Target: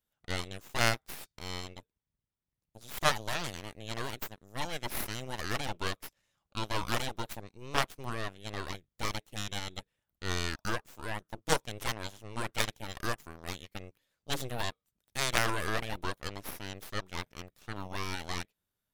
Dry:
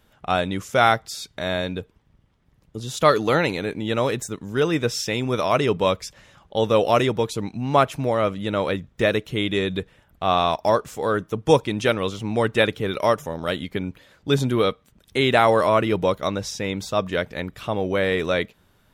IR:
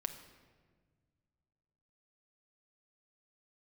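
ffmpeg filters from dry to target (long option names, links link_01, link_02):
-af "crystalizer=i=2.5:c=0,aeval=exprs='0.841*(cos(1*acos(clip(val(0)/0.841,-1,1)))-cos(1*PI/2))+0.299*(cos(3*acos(clip(val(0)/0.841,-1,1)))-cos(3*PI/2))+0.0668*(cos(8*acos(clip(val(0)/0.841,-1,1)))-cos(8*PI/2))':channel_layout=same,volume=-6dB"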